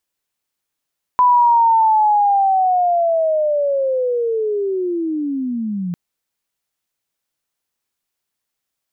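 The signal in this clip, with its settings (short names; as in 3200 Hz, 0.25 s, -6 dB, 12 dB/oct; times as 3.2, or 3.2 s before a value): chirp linear 1000 Hz -> 170 Hz -8.5 dBFS -> -20 dBFS 4.75 s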